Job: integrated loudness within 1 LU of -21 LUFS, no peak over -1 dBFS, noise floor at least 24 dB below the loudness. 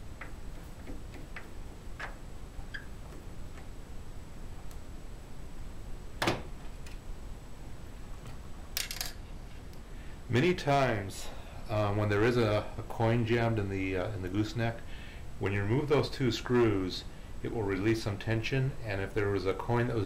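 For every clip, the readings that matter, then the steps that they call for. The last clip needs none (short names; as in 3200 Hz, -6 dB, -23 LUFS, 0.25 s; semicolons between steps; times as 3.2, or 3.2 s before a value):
clipped 0.5%; flat tops at -21.0 dBFS; noise floor -47 dBFS; noise floor target -56 dBFS; loudness -31.5 LUFS; peak -21.0 dBFS; loudness target -21.0 LUFS
-> clip repair -21 dBFS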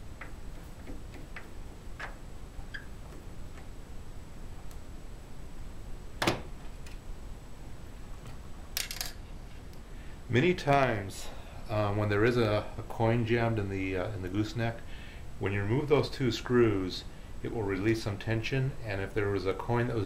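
clipped 0.0%; noise floor -47 dBFS; noise floor target -55 dBFS
-> noise print and reduce 8 dB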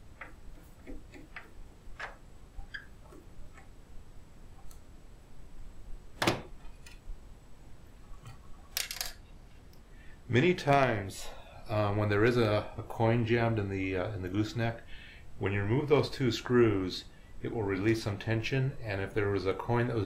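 noise floor -54 dBFS; noise floor target -55 dBFS
-> noise print and reduce 6 dB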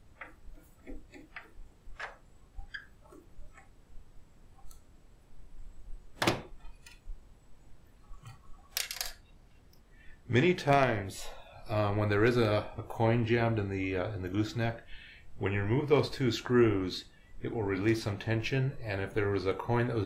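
noise floor -59 dBFS; loudness -31.0 LUFS; peak -12.0 dBFS; loudness target -21.0 LUFS
-> gain +10 dB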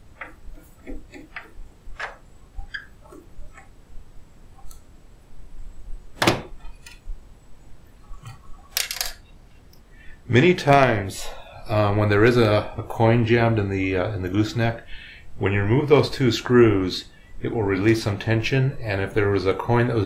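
loudness -21.0 LUFS; peak -2.0 dBFS; noise floor -49 dBFS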